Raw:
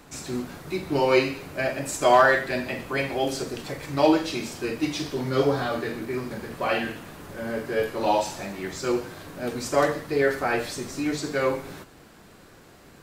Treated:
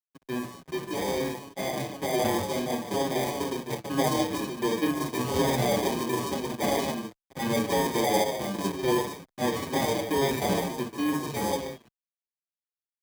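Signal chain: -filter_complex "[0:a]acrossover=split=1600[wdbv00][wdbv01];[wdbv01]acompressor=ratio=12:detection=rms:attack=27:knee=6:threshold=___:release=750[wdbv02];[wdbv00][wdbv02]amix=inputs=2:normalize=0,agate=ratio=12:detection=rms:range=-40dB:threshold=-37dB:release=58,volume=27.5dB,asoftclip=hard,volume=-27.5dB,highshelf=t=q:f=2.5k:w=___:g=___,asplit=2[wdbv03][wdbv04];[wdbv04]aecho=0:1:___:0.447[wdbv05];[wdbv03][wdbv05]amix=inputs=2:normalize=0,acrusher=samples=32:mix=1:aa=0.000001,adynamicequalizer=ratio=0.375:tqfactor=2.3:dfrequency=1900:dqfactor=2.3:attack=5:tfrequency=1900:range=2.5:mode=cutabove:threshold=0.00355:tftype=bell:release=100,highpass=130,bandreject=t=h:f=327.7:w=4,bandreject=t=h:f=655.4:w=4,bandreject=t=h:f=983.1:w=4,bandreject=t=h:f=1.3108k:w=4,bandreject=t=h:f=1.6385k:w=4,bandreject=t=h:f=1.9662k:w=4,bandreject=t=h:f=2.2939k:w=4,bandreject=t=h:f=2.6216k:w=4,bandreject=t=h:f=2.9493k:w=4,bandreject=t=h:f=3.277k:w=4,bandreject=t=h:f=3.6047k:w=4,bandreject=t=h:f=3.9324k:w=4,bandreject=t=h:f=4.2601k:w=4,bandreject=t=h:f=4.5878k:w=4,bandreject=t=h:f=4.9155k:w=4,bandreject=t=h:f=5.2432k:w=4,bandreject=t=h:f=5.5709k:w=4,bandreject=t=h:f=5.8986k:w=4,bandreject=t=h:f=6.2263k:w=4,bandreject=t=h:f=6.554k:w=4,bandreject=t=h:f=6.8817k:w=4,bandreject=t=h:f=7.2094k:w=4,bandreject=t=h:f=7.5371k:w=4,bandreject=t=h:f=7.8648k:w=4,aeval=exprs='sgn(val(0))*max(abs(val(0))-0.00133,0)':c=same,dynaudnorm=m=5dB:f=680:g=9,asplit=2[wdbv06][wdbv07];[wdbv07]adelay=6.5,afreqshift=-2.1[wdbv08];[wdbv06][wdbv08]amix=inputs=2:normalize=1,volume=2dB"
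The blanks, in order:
-43dB, 3, -14, 148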